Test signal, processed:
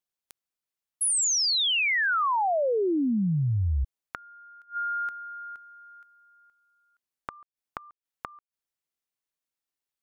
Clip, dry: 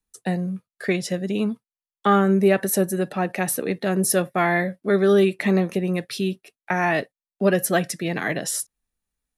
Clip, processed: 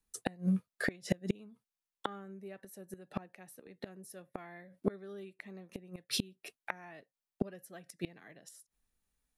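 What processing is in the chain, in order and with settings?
flipped gate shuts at -17 dBFS, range -30 dB

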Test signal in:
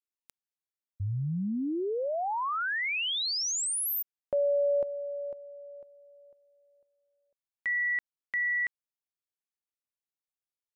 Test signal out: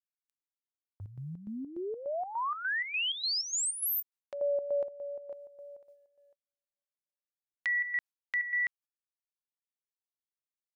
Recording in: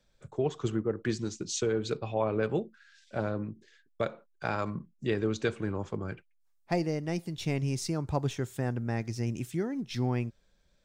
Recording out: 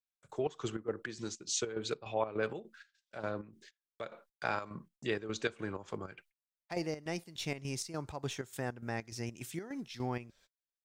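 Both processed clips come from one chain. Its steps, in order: gate -55 dBFS, range -37 dB; low shelf 350 Hz -11 dB; vibrato 4.1 Hz 6.8 cents; chopper 3.4 Hz, depth 65%, duty 60%; mismatched tape noise reduction encoder only

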